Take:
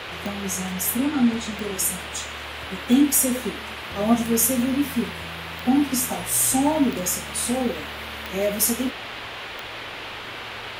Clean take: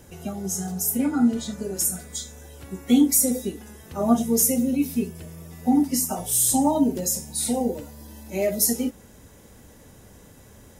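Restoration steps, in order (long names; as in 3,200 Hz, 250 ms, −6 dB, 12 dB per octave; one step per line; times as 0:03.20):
click removal
hum removal 113.5 Hz, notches 5
noise reduction from a noise print 14 dB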